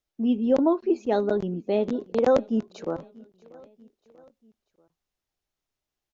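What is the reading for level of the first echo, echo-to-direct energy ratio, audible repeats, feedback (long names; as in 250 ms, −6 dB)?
−23.5 dB, −22.0 dB, 3, 53%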